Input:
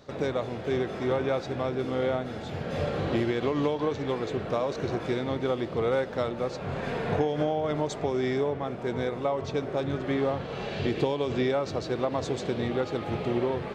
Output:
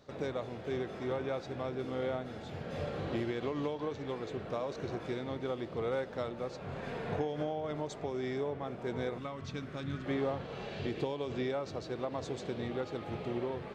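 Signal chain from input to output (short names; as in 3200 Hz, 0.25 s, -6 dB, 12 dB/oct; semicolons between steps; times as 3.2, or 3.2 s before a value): 9.18–10.06 band shelf 570 Hz -10.5 dB; vocal rider 2 s; gain -8.5 dB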